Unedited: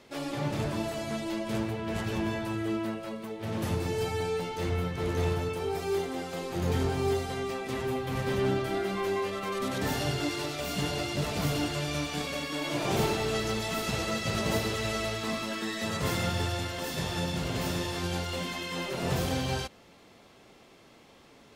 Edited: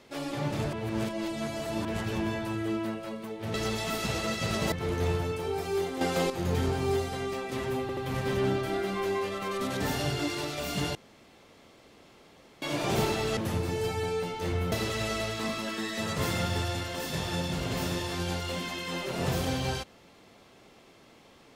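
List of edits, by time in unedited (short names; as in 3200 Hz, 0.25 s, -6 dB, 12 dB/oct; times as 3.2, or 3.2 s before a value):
0.73–1.85 reverse
3.54–4.89 swap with 13.38–14.56
6.18–6.47 gain +8.5 dB
7.98 stutter 0.08 s, 3 plays
10.96–12.63 room tone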